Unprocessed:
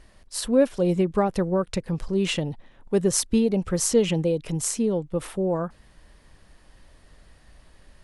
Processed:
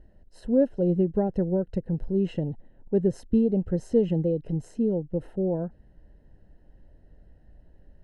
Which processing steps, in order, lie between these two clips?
running mean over 38 samples

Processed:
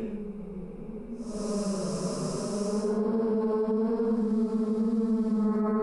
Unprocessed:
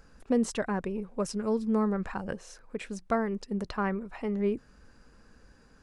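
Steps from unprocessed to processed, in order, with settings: stepped spectrum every 0.2 s; Paulstretch 7×, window 0.10 s, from 0.98; limiter -25.5 dBFS, peak gain reduction 9.5 dB; gain +5.5 dB

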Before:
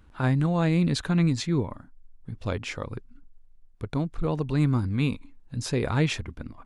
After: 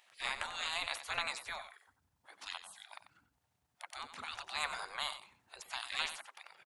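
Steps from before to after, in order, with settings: spectral gate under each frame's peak -30 dB weak; resonant low shelf 570 Hz -7 dB, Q 1.5; echo 92 ms -11.5 dB; gain +6 dB

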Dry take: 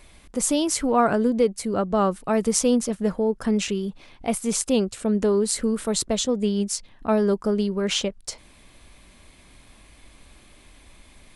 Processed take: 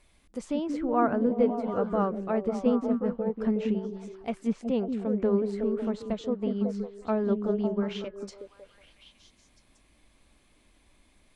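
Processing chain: delay with a stepping band-pass 0.184 s, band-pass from 250 Hz, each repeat 0.7 oct, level -0.5 dB; treble ducked by the level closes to 1900 Hz, closed at -17.5 dBFS; upward expander 1.5:1, over -31 dBFS; gain -4.5 dB

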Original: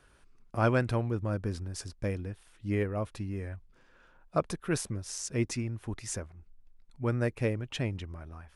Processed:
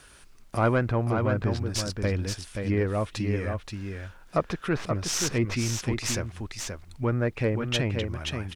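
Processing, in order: tracing distortion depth 0.14 ms; treble ducked by the level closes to 1500 Hz, closed at -26 dBFS; high shelf 2200 Hz +12 dB; in parallel at 0 dB: limiter -26.5 dBFS, peak gain reduction 13 dB; on the sum: added noise pink -69 dBFS; on a send: echo 0.528 s -5.5 dB

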